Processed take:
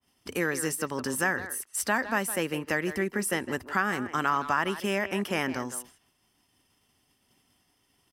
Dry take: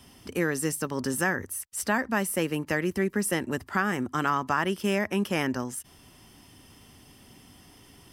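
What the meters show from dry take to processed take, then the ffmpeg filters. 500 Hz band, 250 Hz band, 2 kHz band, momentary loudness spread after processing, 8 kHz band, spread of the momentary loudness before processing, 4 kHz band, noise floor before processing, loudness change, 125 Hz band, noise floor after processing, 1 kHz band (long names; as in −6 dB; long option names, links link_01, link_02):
−1.5 dB, −3.5 dB, +0.5 dB, 5 LU, 0.0 dB, 5 LU, 0.0 dB, −55 dBFS, −1.0 dB, −4.5 dB, −71 dBFS, +0.5 dB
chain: -filter_complex "[0:a]agate=range=-33dB:threshold=-40dB:ratio=3:detection=peak,lowshelf=frequency=430:gain=-7,asplit=2[link_01][link_02];[link_02]acompressor=threshold=-40dB:ratio=6,volume=-1.5dB[link_03];[link_01][link_03]amix=inputs=2:normalize=0,asplit=2[link_04][link_05];[link_05]adelay=160,highpass=300,lowpass=3400,asoftclip=type=hard:threshold=-20dB,volume=-11dB[link_06];[link_04][link_06]amix=inputs=2:normalize=0,adynamicequalizer=threshold=0.00794:dfrequency=2800:dqfactor=0.7:tfrequency=2800:tqfactor=0.7:attack=5:release=100:ratio=0.375:range=1.5:mode=cutabove:tftype=highshelf"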